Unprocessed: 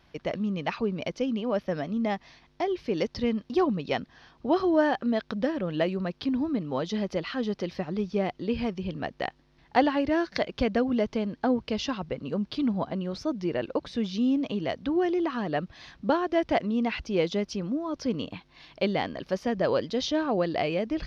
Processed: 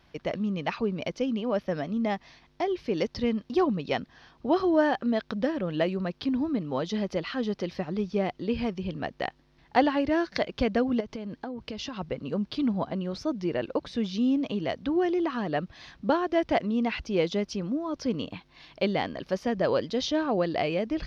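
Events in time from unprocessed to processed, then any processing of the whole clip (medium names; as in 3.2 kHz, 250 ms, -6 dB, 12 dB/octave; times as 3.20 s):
11.00–11.98 s: compression 16:1, threshold -31 dBFS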